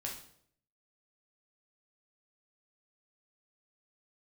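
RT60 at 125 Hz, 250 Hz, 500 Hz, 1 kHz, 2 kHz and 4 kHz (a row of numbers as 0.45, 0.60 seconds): 0.80, 0.75, 0.70, 0.60, 0.55, 0.55 seconds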